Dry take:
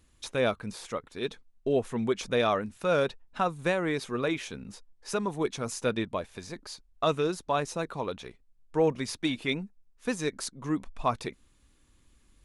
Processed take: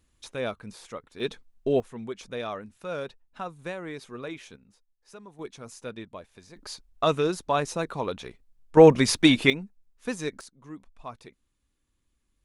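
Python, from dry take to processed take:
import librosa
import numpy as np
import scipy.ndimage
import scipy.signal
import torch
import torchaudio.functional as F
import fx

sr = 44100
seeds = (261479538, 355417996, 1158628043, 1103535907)

y = fx.gain(x, sr, db=fx.steps((0.0, -4.5), (1.2, 2.5), (1.8, -8.0), (4.56, -16.5), (5.39, -9.5), (6.57, 3.0), (8.77, 11.5), (9.5, -1.0), (10.41, -12.5)))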